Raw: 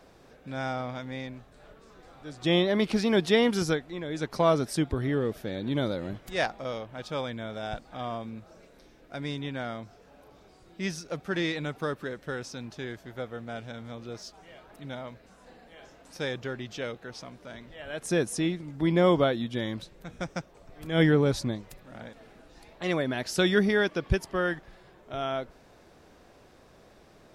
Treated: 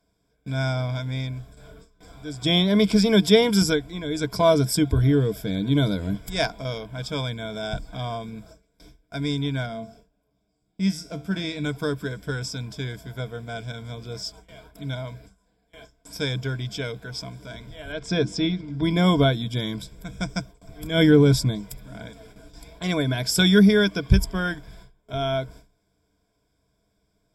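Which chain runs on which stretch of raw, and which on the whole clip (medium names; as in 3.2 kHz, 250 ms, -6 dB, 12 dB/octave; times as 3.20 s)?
9.66–11.64 s: feedback comb 75 Hz, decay 0.43 s + small resonant body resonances 200/640/2700 Hz, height 6 dB, ringing for 20 ms
17.92–18.83 s: low-pass 5.3 kHz 24 dB/octave + hum notches 50/100/150/200/250/300/350 Hz
whole clip: tone controls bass +9 dB, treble +10 dB; gate with hold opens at -38 dBFS; rippled EQ curve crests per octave 1.7, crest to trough 13 dB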